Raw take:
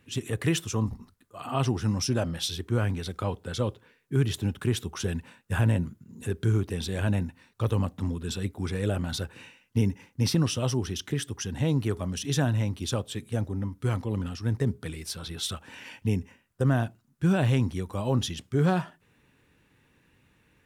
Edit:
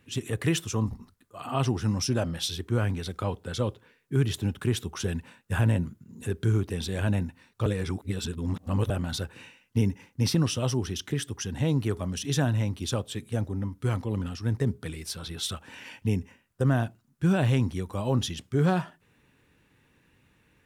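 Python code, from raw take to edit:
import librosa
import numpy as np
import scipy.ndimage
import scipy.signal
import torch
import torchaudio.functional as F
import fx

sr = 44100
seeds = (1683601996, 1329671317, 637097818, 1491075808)

y = fx.edit(x, sr, fx.reverse_span(start_s=7.66, length_s=1.24), tone=tone)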